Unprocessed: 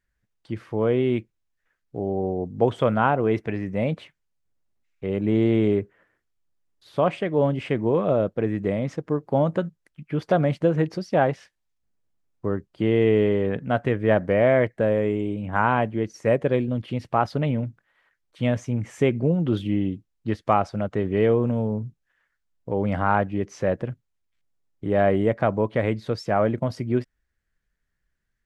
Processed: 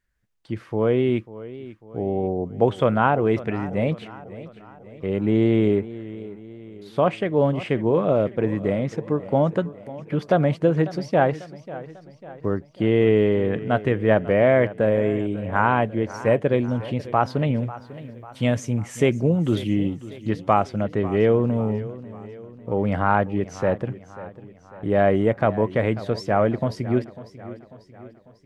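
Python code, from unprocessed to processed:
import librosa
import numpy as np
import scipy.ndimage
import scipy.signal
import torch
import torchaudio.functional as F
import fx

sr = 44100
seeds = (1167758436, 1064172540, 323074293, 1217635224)

y = fx.high_shelf(x, sr, hz=5400.0, db=11.0, at=(17.56, 20.29))
y = fx.echo_warbled(y, sr, ms=545, feedback_pct=51, rate_hz=2.8, cents=75, wet_db=-16.5)
y = y * 10.0 ** (1.5 / 20.0)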